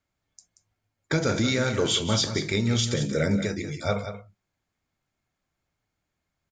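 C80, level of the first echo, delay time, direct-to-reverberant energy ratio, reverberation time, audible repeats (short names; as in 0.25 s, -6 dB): none, -10.0 dB, 0.181 s, none, none, 1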